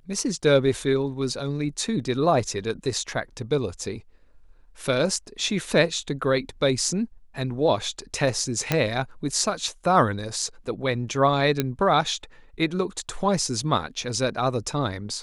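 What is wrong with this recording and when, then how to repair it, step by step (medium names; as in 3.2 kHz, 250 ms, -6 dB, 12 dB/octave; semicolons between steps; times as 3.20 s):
8.72 s: pop -6 dBFS
11.60 s: pop -8 dBFS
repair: de-click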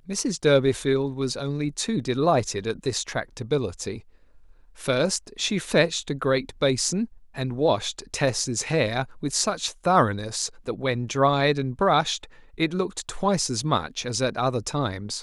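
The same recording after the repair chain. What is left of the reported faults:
nothing left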